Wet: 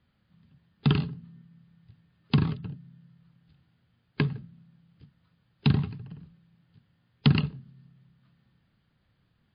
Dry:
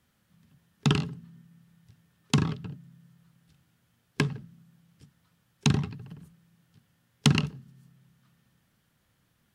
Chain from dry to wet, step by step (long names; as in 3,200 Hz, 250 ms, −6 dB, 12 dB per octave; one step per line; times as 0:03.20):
low-shelf EQ 210 Hz +7 dB
level −2.5 dB
MP3 24 kbit/s 11,025 Hz